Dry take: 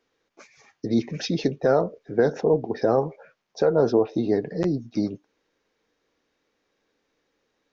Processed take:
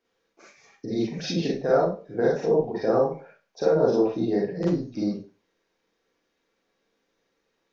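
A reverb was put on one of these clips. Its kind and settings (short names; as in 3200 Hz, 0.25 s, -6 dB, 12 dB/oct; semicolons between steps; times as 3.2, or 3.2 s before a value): Schroeder reverb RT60 0.32 s, combs from 33 ms, DRR -5 dB; gain -7 dB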